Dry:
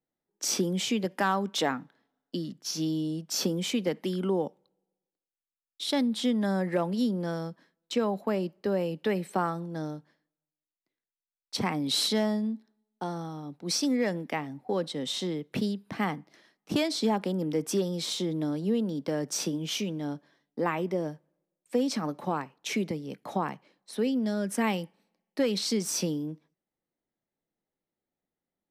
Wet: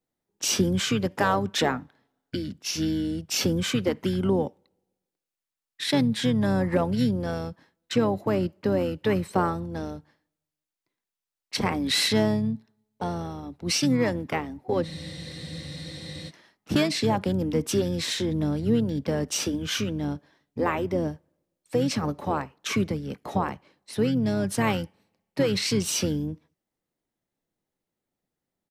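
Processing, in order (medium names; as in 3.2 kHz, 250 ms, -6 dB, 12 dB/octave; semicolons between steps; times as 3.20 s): harmony voices -12 st -7 dB, -7 st -14 dB; spectral freeze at 14.85 s, 1.43 s; trim +3 dB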